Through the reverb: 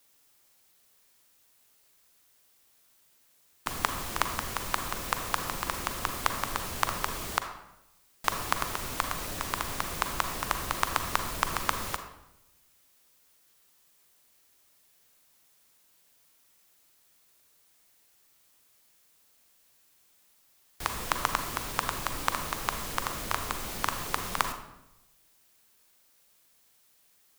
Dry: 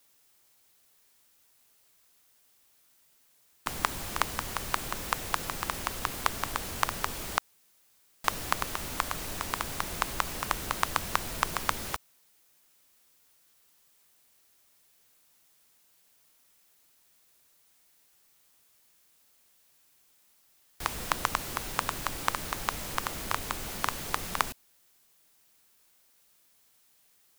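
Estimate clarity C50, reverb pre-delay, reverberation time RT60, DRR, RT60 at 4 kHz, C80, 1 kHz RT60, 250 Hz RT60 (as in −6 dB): 8.5 dB, 36 ms, 0.90 s, 7.0 dB, 0.60 s, 10.5 dB, 0.85 s, 1.0 s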